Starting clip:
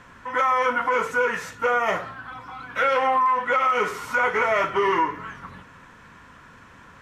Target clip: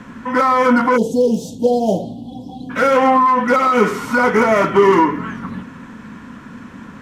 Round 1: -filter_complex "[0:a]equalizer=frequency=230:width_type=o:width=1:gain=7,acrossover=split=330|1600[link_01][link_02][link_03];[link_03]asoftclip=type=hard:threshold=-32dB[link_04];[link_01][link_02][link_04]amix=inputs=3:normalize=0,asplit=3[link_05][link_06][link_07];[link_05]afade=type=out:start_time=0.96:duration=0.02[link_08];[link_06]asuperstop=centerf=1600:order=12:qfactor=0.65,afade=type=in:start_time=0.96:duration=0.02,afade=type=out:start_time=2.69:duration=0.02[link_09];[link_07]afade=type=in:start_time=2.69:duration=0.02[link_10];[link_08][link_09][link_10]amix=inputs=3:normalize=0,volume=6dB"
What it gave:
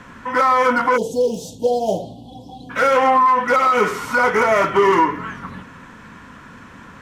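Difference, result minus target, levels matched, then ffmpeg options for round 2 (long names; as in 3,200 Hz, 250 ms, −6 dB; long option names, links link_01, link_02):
250 Hz band −6.5 dB
-filter_complex "[0:a]equalizer=frequency=230:width_type=o:width=1:gain=18,acrossover=split=330|1600[link_01][link_02][link_03];[link_03]asoftclip=type=hard:threshold=-32dB[link_04];[link_01][link_02][link_04]amix=inputs=3:normalize=0,asplit=3[link_05][link_06][link_07];[link_05]afade=type=out:start_time=0.96:duration=0.02[link_08];[link_06]asuperstop=centerf=1600:order=12:qfactor=0.65,afade=type=in:start_time=0.96:duration=0.02,afade=type=out:start_time=2.69:duration=0.02[link_09];[link_07]afade=type=in:start_time=2.69:duration=0.02[link_10];[link_08][link_09][link_10]amix=inputs=3:normalize=0,volume=6dB"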